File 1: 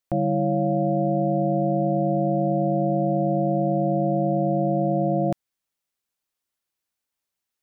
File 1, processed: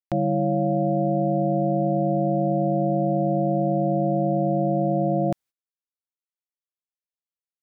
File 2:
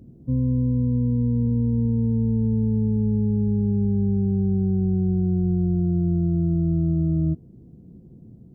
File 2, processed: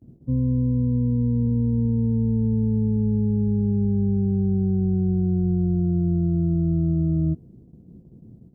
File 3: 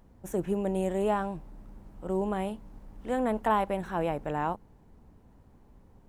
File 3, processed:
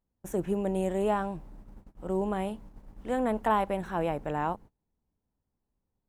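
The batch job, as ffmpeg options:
ffmpeg -i in.wav -af "agate=range=-26dB:threshold=-46dB:ratio=16:detection=peak" out.wav

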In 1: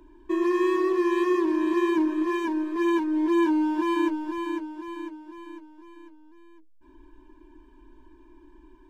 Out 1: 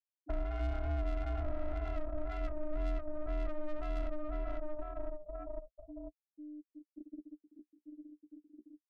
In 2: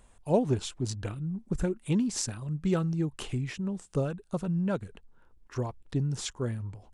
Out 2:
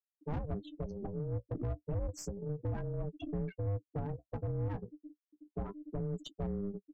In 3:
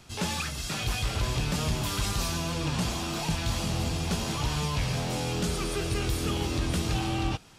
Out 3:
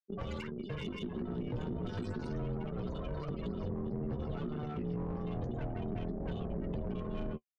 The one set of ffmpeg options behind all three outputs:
ffmpeg -i in.wav -filter_complex "[0:a]afftfilt=real='re*gte(hypot(re,im),0.0501)':imag='im*gte(hypot(re,im),0.0501)':win_size=1024:overlap=0.75,equalizer=frequency=6000:width_type=o:width=1.2:gain=-10.5,acompressor=threshold=-32dB:ratio=2.5,flanger=delay=7.9:depth=8.5:regen=23:speed=0.31:shape=sinusoidal,aeval=exprs='(tanh(70.8*val(0)+0.4)-tanh(0.4))/70.8':channel_layout=same,aeval=exprs='val(0)*sin(2*PI*300*n/s)':channel_layout=same,aeval=exprs='0.02*(cos(1*acos(clip(val(0)/0.02,-1,1)))-cos(1*PI/2))+0.000794*(cos(6*acos(clip(val(0)/0.02,-1,1)))-cos(6*PI/2))':channel_layout=same,acrossover=split=210[link_01][link_02];[link_02]acompressor=threshold=-53dB:ratio=6[link_03];[link_01][link_03]amix=inputs=2:normalize=0,volume=11.5dB" out.wav

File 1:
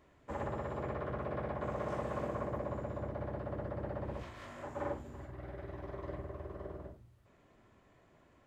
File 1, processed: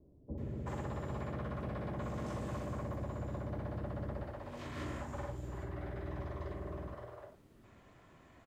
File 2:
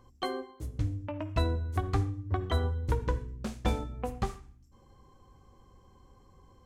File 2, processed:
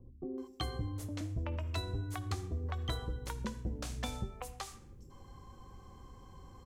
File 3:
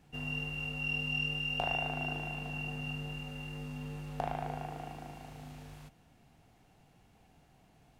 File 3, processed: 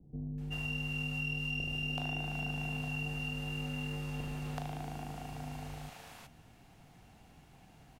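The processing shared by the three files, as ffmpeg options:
ffmpeg -i in.wav -filter_complex "[0:a]acrossover=split=340|3400[link_01][link_02][link_03];[link_01]acompressor=threshold=-43dB:ratio=4[link_04];[link_02]acompressor=threshold=-49dB:ratio=4[link_05];[link_03]acompressor=threshold=-49dB:ratio=4[link_06];[link_04][link_05][link_06]amix=inputs=3:normalize=0,acrossover=split=480[link_07][link_08];[link_08]adelay=380[link_09];[link_07][link_09]amix=inputs=2:normalize=0,volume=5.5dB" out.wav

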